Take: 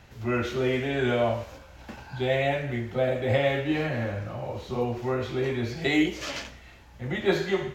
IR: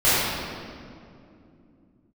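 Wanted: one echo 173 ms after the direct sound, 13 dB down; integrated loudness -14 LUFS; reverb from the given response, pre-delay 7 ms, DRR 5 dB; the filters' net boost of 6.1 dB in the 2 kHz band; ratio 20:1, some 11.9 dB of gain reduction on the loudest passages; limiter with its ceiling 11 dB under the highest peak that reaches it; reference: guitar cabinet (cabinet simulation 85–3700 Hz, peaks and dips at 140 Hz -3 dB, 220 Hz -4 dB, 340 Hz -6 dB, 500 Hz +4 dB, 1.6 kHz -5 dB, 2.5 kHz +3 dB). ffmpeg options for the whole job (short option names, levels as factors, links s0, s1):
-filter_complex "[0:a]equalizer=f=2000:t=o:g=7.5,acompressor=threshold=0.0398:ratio=20,alimiter=level_in=1.68:limit=0.0631:level=0:latency=1,volume=0.596,aecho=1:1:173:0.224,asplit=2[s0][s1];[1:a]atrim=start_sample=2205,adelay=7[s2];[s1][s2]afir=irnorm=-1:irlink=0,volume=0.0473[s3];[s0][s3]amix=inputs=2:normalize=0,highpass=85,equalizer=f=140:t=q:w=4:g=-3,equalizer=f=220:t=q:w=4:g=-4,equalizer=f=340:t=q:w=4:g=-6,equalizer=f=500:t=q:w=4:g=4,equalizer=f=1600:t=q:w=4:g=-5,equalizer=f=2500:t=q:w=4:g=3,lowpass=f=3700:w=0.5412,lowpass=f=3700:w=1.3066,volume=12.6"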